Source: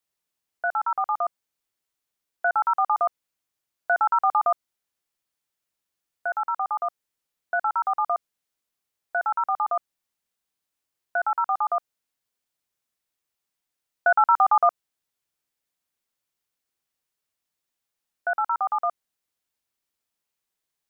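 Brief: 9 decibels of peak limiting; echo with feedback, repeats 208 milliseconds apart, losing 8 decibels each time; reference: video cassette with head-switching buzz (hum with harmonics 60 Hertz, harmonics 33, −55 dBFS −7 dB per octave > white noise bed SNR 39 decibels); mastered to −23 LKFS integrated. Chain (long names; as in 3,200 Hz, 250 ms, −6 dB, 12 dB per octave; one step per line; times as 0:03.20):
brickwall limiter −19 dBFS
repeating echo 208 ms, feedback 40%, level −8 dB
hum with harmonics 60 Hz, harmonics 33, −55 dBFS −7 dB per octave
white noise bed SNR 39 dB
level +6 dB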